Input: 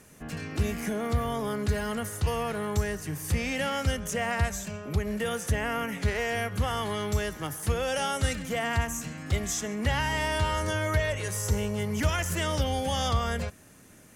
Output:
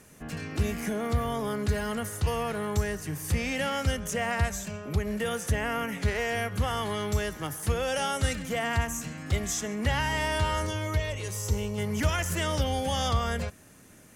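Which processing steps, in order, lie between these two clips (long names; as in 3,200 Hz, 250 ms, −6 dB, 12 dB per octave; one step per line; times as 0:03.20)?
0:10.66–0:11.78: graphic EQ with 15 bands 160 Hz −5 dB, 630 Hz −5 dB, 1,600 Hz −9 dB, 10,000 Hz −5 dB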